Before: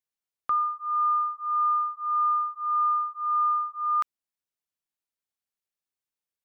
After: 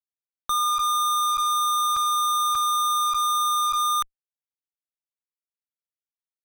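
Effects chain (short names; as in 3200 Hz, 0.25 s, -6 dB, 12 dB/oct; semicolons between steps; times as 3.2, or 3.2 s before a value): 1.39–2.6 transient shaper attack -11 dB, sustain +10 dB; fuzz box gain 58 dB, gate -58 dBFS; gain -9 dB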